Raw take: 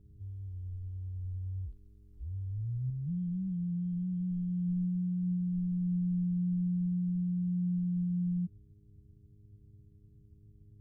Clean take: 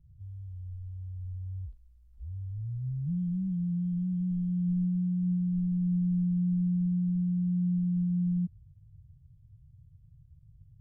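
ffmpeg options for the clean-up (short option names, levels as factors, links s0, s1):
-af "bandreject=f=102.5:t=h:w=4,bandreject=f=205:t=h:w=4,bandreject=f=307.5:t=h:w=4,bandreject=f=410:t=h:w=4,asetnsamples=n=441:p=0,asendcmd='2.9 volume volume 3.5dB',volume=1"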